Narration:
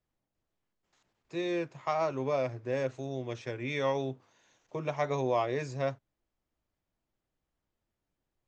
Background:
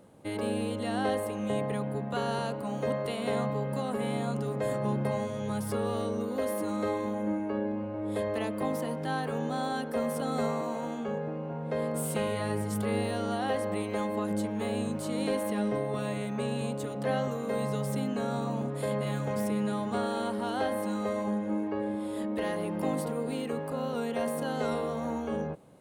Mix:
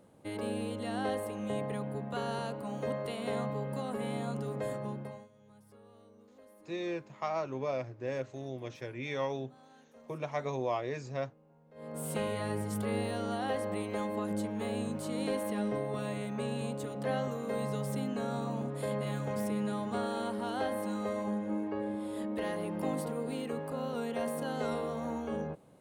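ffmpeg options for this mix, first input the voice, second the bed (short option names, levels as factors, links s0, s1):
-filter_complex "[0:a]adelay=5350,volume=0.631[s0];[1:a]volume=8.91,afade=t=out:st=4.59:d=0.7:silence=0.0749894,afade=t=in:st=11.74:d=0.41:silence=0.0668344[s1];[s0][s1]amix=inputs=2:normalize=0"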